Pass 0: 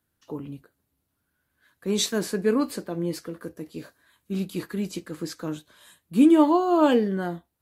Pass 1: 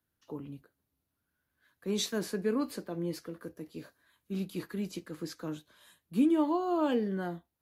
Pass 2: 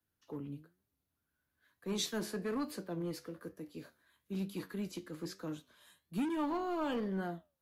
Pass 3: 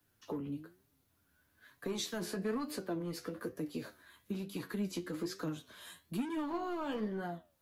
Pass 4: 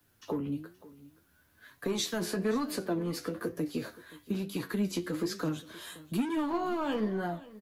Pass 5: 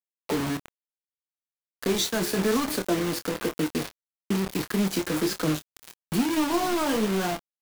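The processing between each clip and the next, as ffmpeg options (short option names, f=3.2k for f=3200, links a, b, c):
-filter_complex "[0:a]equalizer=f=8.1k:w=3.5:g=-5,acrossover=split=220[a][b];[b]acompressor=threshold=-22dB:ratio=2[c];[a][c]amix=inputs=2:normalize=0,volume=-6.5dB"
-filter_complex "[0:a]flanger=delay=9.9:depth=4.3:regen=80:speed=1.1:shape=sinusoidal,acrossover=split=200|750|2500[a][b][c][d];[b]asoftclip=type=hard:threshold=-39dB[e];[a][e][c][d]amix=inputs=4:normalize=0,volume=1.5dB"
-af "acompressor=threshold=-47dB:ratio=6,flanger=delay=6.6:depth=5.2:regen=38:speed=1.1:shape=triangular,volume=15dB"
-af "aecho=1:1:524:0.106,volume=6dB"
-filter_complex "[0:a]acrusher=bits=5:mix=0:aa=0.000001,asplit=2[a][b];[b]adelay=26,volume=-10.5dB[c];[a][c]amix=inputs=2:normalize=0,volume=5.5dB"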